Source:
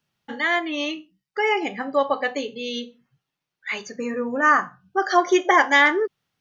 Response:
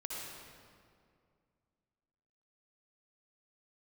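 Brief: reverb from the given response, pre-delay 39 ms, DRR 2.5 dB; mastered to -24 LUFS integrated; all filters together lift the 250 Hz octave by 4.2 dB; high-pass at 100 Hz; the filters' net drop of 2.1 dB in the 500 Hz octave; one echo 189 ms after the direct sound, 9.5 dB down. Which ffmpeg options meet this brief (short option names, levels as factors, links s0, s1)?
-filter_complex "[0:a]highpass=100,equalizer=f=250:t=o:g=8.5,equalizer=f=500:t=o:g=-6.5,aecho=1:1:189:0.335,asplit=2[s0][s1];[1:a]atrim=start_sample=2205,adelay=39[s2];[s1][s2]afir=irnorm=-1:irlink=0,volume=0.668[s3];[s0][s3]amix=inputs=2:normalize=0,volume=0.596"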